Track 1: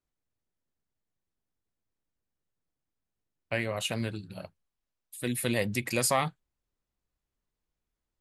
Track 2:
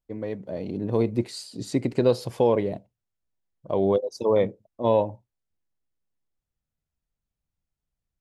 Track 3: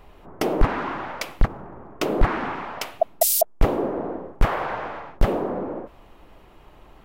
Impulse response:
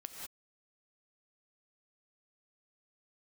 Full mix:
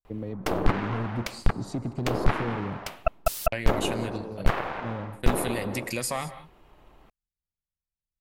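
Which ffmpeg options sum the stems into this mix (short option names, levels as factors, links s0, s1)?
-filter_complex "[0:a]agate=range=0.0891:threshold=0.01:ratio=16:detection=peak,volume=1.41,asplit=3[s0][s1][s2];[s1]volume=0.211[s3];[1:a]lowshelf=f=300:g=12,acrossover=split=350|3000[s4][s5][s6];[s5]acompressor=threshold=0.0251:ratio=6[s7];[s4][s7][s6]amix=inputs=3:normalize=0,asoftclip=type=hard:threshold=0.188,volume=0.447,asplit=2[s8][s9];[s9]volume=0.266[s10];[2:a]acrossover=split=4400[s11][s12];[s12]acompressor=threshold=0.0398:ratio=4:attack=1:release=60[s13];[s11][s13]amix=inputs=2:normalize=0,aeval=exprs='0.447*(cos(1*acos(clip(val(0)/0.447,-1,1)))-cos(1*PI/2))+0.178*(cos(4*acos(clip(val(0)/0.447,-1,1)))-cos(4*PI/2))':c=same,adelay=50,volume=0.501[s14];[s2]apad=whole_len=361993[s15];[s8][s15]sidechaincompress=threshold=0.0112:ratio=8:attack=16:release=1460[s16];[s0][s16]amix=inputs=2:normalize=0,agate=range=0.0224:threshold=0.00891:ratio=3:detection=peak,acompressor=threshold=0.0316:ratio=5,volume=1[s17];[3:a]atrim=start_sample=2205[s18];[s3][s10]amix=inputs=2:normalize=0[s19];[s19][s18]afir=irnorm=-1:irlink=0[s20];[s14][s17][s20]amix=inputs=3:normalize=0"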